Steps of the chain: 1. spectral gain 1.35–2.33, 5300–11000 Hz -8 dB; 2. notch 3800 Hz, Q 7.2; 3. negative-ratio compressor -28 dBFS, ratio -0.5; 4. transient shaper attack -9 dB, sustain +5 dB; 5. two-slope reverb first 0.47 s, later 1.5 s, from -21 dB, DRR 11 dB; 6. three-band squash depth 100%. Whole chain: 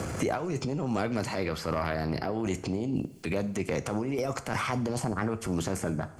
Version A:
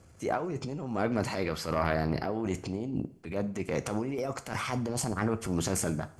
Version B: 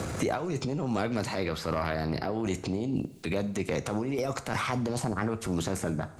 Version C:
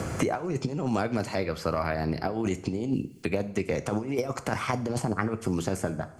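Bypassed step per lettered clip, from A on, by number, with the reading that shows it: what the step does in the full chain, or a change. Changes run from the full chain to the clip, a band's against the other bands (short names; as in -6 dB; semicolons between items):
6, crest factor change +3.5 dB; 2, 4 kHz band +1.5 dB; 4, crest factor change +2.0 dB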